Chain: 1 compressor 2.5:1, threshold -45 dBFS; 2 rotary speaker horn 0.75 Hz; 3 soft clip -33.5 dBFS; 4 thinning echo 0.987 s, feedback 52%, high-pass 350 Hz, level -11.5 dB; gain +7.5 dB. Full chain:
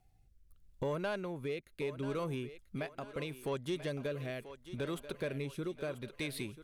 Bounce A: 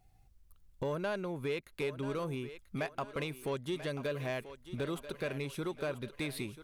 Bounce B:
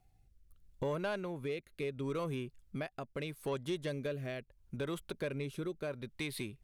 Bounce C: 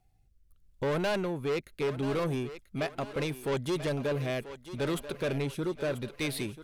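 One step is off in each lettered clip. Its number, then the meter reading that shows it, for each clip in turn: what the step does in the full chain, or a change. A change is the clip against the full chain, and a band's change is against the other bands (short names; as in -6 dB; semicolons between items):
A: 2, momentary loudness spread change -2 LU; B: 4, echo-to-direct -10.5 dB to none; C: 1, mean gain reduction 9.5 dB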